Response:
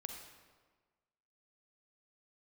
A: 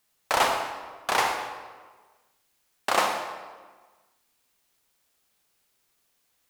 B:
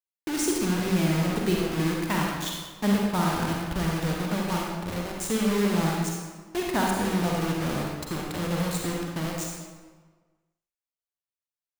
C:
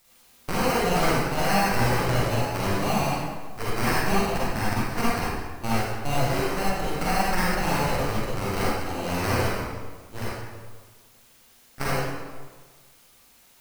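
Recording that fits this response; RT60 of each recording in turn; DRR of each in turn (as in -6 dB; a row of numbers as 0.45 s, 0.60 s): A; 1.4 s, 1.4 s, 1.4 s; 3.5 dB, -1.5 dB, -8.0 dB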